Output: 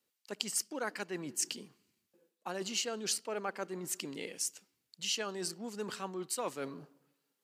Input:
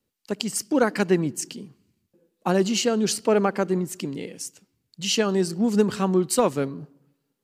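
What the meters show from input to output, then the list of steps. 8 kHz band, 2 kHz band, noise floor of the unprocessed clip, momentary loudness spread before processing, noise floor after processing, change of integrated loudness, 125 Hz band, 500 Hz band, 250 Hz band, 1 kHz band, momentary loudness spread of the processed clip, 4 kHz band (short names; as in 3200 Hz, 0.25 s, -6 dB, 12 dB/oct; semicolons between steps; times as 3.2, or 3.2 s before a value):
-6.0 dB, -10.5 dB, -78 dBFS, 13 LU, -84 dBFS, -13.5 dB, -21.5 dB, -17.0 dB, -20.0 dB, -13.5 dB, 9 LU, -8.0 dB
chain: reverse; compressor 5:1, threshold -29 dBFS, peak gain reduction 14 dB; reverse; HPF 860 Hz 6 dB/oct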